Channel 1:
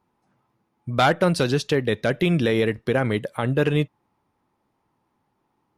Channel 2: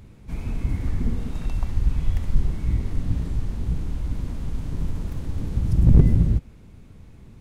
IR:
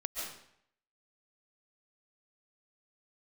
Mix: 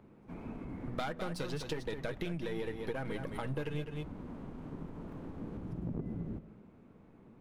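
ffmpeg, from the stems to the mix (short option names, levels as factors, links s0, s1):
-filter_complex "[0:a]aeval=exprs='if(lt(val(0),0),0.447*val(0),val(0))':c=same,bandreject=f=60:t=h:w=6,bandreject=f=120:t=h:w=6,bandreject=f=180:t=h:w=6,aecho=1:1:6.3:0.34,volume=0.398,asplit=2[s0][s1];[s1]volume=0.335[s2];[1:a]equalizer=f=1900:t=o:w=0.74:g=-4,acompressor=threshold=0.0631:ratio=2,acrossover=split=180 2200:gain=0.0891 1 0.0891[s3][s4][s5];[s3][s4][s5]amix=inputs=3:normalize=0,volume=0.562,asplit=2[s6][s7];[s7]volume=0.299[s8];[2:a]atrim=start_sample=2205[s9];[s8][s9]afir=irnorm=-1:irlink=0[s10];[s2]aecho=0:1:207:1[s11];[s0][s6][s10][s11]amix=inputs=4:normalize=0,acompressor=threshold=0.0224:ratio=10"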